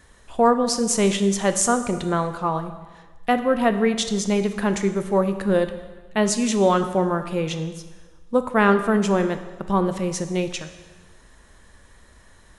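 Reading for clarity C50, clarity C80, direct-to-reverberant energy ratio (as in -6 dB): 10.5 dB, 12.0 dB, 8.5 dB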